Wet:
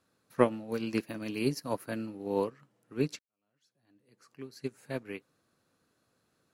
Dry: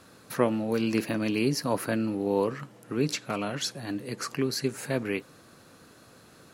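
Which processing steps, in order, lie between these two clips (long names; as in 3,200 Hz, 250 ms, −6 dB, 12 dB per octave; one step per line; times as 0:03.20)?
0:01.03–0:02.07: high-shelf EQ 11,000 Hz +8.5 dB
0:03.19–0:04.77: fade in quadratic
expander for the loud parts 2.5 to 1, over −35 dBFS
level +2.5 dB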